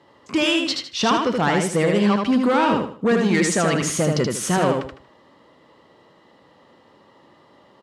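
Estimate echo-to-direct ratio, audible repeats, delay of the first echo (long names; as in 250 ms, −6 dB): −3.0 dB, 4, 78 ms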